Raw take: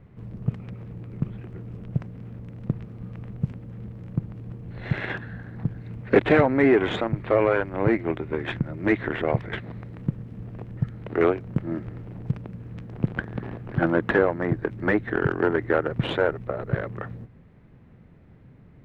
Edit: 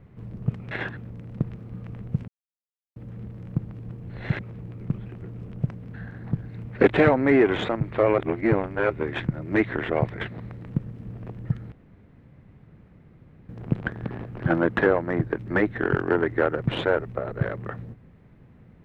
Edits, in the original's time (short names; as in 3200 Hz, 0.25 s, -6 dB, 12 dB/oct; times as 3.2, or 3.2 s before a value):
0.71–2.26 swap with 5–5.26
3.57 insert silence 0.68 s
7.5–8.22 reverse
11.04–12.81 room tone